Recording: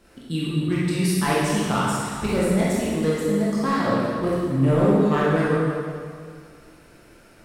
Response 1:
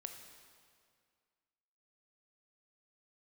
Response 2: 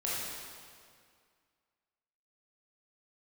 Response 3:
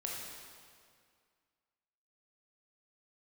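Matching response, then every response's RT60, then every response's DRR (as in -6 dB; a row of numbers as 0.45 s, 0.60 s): 2; 2.1 s, 2.1 s, 2.1 s; 4.5 dB, -7.5 dB, -3.0 dB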